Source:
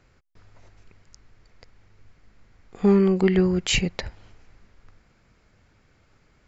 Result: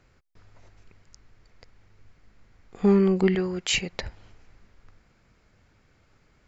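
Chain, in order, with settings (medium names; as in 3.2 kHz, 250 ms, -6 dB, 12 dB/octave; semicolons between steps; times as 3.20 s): 3.35–3.93 s: bass shelf 270 Hz -12 dB; trim -1.5 dB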